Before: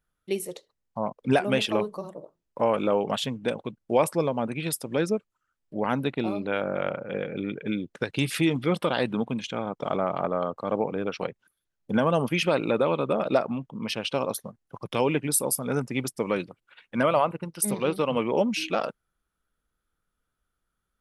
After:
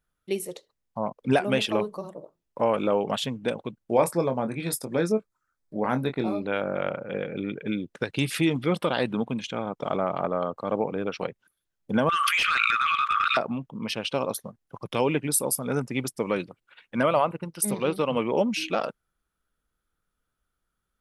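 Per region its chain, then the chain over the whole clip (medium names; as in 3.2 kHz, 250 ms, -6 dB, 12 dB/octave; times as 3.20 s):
3.94–6.41 s: peaking EQ 2.9 kHz -12.5 dB 0.28 oct + doubling 23 ms -8 dB
12.09–13.37 s: brick-wall FIR high-pass 1.1 kHz + overdrive pedal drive 15 dB, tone 2.2 kHz, clips at -13.5 dBFS + level flattener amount 100%
whole clip: none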